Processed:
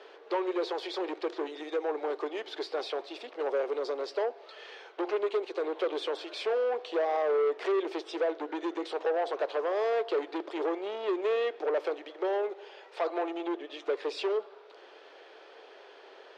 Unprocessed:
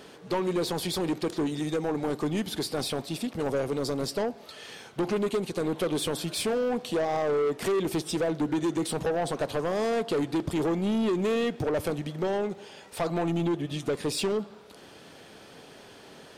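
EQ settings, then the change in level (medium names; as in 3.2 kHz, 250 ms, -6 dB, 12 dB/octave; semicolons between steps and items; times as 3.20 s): steep high-pass 360 Hz 48 dB/octave; distance through air 200 m; treble shelf 11 kHz -8.5 dB; 0.0 dB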